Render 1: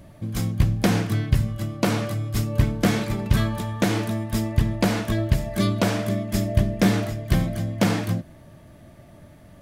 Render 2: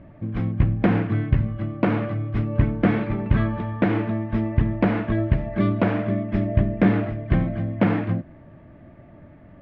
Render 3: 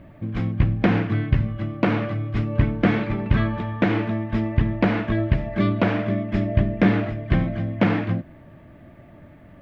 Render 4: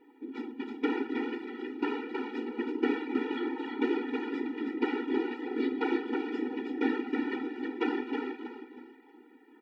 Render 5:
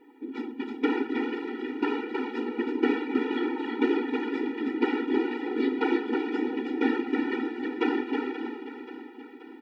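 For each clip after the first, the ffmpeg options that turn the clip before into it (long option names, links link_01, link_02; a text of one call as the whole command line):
ffmpeg -i in.wav -af "lowpass=frequency=2400:width=0.5412,lowpass=frequency=2400:width=1.3066,equalizer=frequency=290:width=2.1:gain=4" out.wav
ffmpeg -i in.wav -af "crystalizer=i=3.5:c=0" out.wav
ffmpeg -i in.wav -af "aecho=1:1:319|638|957|1276:0.631|0.202|0.0646|0.0207,afftfilt=real='hypot(re,im)*cos(2*PI*random(0))':imag='hypot(re,im)*sin(2*PI*random(1))':win_size=512:overlap=0.75,afftfilt=real='re*eq(mod(floor(b*sr/1024/250),2),1)':imag='im*eq(mod(floor(b*sr/1024/250),2),1)':win_size=1024:overlap=0.75" out.wav
ffmpeg -i in.wav -af "aecho=1:1:530|1060|1590|2120|2650|3180:0.251|0.133|0.0706|0.0374|0.0198|0.0105,volume=4dB" out.wav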